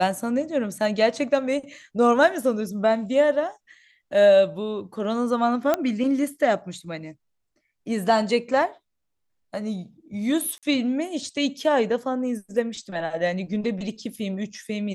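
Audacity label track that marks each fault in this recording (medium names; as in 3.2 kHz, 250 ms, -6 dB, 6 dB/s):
5.740000	5.740000	pop -8 dBFS
10.580000	10.630000	dropout 47 ms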